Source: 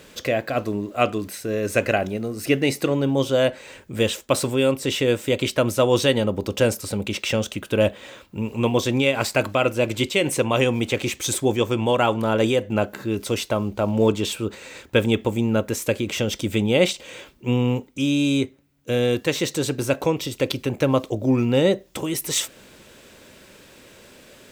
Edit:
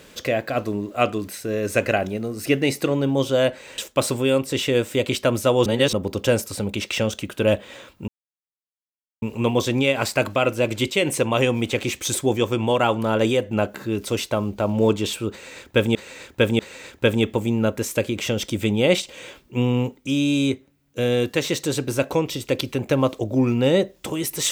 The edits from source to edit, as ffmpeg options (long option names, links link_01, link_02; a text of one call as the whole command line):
ffmpeg -i in.wav -filter_complex "[0:a]asplit=7[link_01][link_02][link_03][link_04][link_05][link_06][link_07];[link_01]atrim=end=3.782[link_08];[link_02]atrim=start=4.108:end=5.992[link_09];[link_03]atrim=start=5.988:end=6.262,asetpts=PTS-STARTPTS,areverse[link_10];[link_04]atrim=start=6.258:end=8.41,asetpts=PTS-STARTPTS,afade=type=out:start_time=2.148:duration=0.004:curve=hsin,apad=pad_dur=1.14[link_11];[link_05]atrim=start=8.41:end=15.142,asetpts=PTS-STARTPTS,afade=type=in:duration=0.004:curve=hsin[link_12];[link_06]atrim=start=14.498:end=15.142[link_13];[link_07]atrim=start=14.498[link_14];[link_08][link_09]acrossfade=duration=0.004:curve1=hsin:curve2=hsin[link_15];[link_15][link_10]acrossfade=duration=0.004:curve1=hsin:curve2=hsin[link_16];[link_11][link_12]concat=n=2:v=0:a=1[link_17];[link_16][link_17]acrossfade=duration=0.004:curve1=hsin:curve2=hsin[link_18];[link_18][link_13]acrossfade=duration=0.004:curve1=hsin:curve2=hsin[link_19];[link_19][link_14]acrossfade=duration=0.004:curve1=hsin:curve2=hsin" out.wav